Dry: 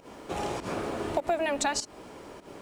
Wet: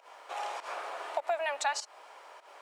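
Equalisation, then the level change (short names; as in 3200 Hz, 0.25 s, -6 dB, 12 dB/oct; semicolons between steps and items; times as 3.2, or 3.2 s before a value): HPF 690 Hz 24 dB/oct; high shelf 4700 Hz -9.5 dB; 0.0 dB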